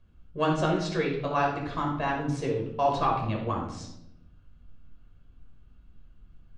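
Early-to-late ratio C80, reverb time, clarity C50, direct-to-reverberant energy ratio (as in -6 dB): 8.5 dB, 0.85 s, 4.0 dB, -1.0 dB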